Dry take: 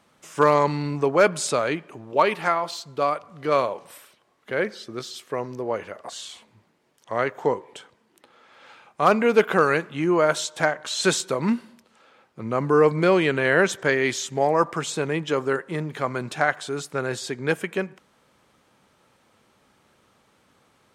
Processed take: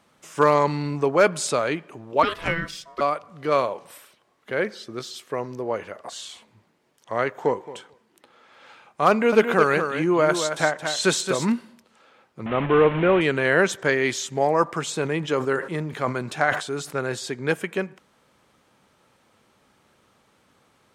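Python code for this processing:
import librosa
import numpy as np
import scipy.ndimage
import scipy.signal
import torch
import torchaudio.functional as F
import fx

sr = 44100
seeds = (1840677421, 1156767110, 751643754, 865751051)

y = fx.ring_mod(x, sr, carrier_hz=830.0, at=(2.23, 3.01))
y = fx.echo_throw(y, sr, start_s=7.23, length_s=0.42, ms=220, feedback_pct=10, wet_db=-16.0)
y = fx.echo_single(y, sr, ms=223, db=-7.5, at=(9.1, 11.52))
y = fx.delta_mod(y, sr, bps=16000, step_db=-23.0, at=(12.46, 13.21))
y = fx.sustainer(y, sr, db_per_s=110.0, at=(14.94, 16.99))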